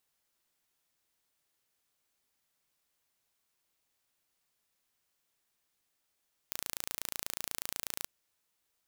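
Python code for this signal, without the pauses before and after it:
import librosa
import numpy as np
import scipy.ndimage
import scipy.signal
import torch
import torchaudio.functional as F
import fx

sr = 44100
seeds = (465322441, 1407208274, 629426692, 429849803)

y = 10.0 ** (-8.5 / 20.0) * (np.mod(np.arange(round(1.55 * sr)), round(sr / 28.2)) == 0)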